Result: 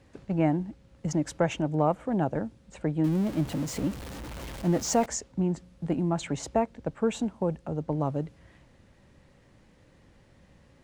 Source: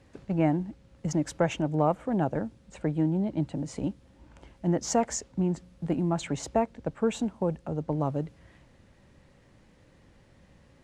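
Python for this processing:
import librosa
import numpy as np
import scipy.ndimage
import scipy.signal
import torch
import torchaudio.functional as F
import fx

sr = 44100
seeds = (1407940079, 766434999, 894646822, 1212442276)

y = fx.zero_step(x, sr, step_db=-34.5, at=(3.04, 5.06))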